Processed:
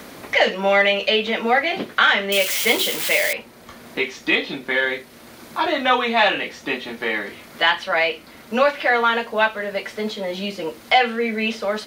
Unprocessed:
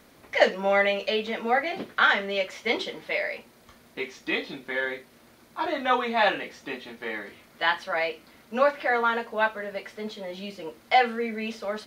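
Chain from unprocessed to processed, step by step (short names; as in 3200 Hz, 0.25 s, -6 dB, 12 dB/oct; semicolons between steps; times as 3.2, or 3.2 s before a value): 2.32–3.33 switching spikes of -20.5 dBFS; dynamic EQ 2900 Hz, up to +6 dB, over -42 dBFS, Q 1.7; in parallel at -9 dB: soft clip -13.5 dBFS, distortion -16 dB; on the sum: maximiser +6.5 dB; three-band squash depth 40%; gain -3 dB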